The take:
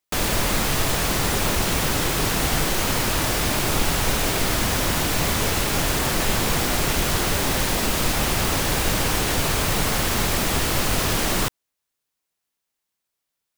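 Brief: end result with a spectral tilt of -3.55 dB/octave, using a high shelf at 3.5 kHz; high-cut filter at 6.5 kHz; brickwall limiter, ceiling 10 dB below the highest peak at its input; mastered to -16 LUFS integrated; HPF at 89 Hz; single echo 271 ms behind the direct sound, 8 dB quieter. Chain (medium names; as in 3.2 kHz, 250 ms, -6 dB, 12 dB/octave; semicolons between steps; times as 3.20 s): high-pass 89 Hz; low-pass 6.5 kHz; treble shelf 3.5 kHz +8 dB; peak limiter -18 dBFS; delay 271 ms -8 dB; trim +9 dB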